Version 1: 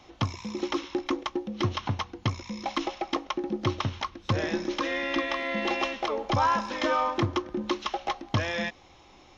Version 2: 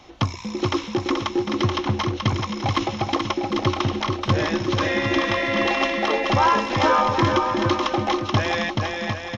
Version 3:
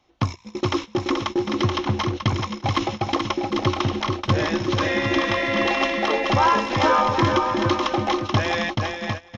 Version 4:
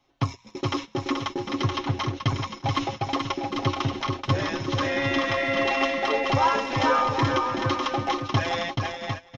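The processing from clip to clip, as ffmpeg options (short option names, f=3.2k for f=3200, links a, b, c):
-af "aecho=1:1:430|752.5|994.4|1176|1312:0.631|0.398|0.251|0.158|0.1,volume=5.5dB"
-af "agate=range=-17dB:threshold=-27dB:ratio=16:detection=peak"
-af "aecho=1:1:7.3:0.68,volume=-5dB"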